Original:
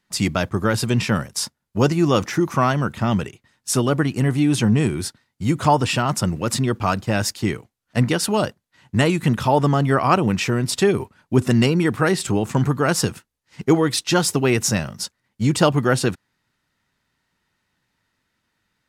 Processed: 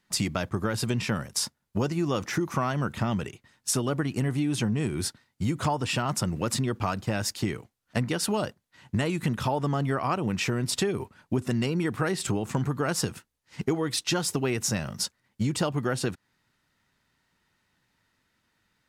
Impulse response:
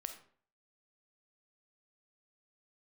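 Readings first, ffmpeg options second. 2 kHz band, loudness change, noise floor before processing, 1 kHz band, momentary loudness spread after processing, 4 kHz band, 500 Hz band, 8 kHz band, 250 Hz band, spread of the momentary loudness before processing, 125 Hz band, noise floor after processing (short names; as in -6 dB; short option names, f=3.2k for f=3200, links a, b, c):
-8.5 dB, -8.5 dB, -76 dBFS, -9.5 dB, 6 LU, -6.0 dB, -9.5 dB, -5.5 dB, -8.5 dB, 9 LU, -8.5 dB, -76 dBFS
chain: -af "acompressor=threshold=-24dB:ratio=6"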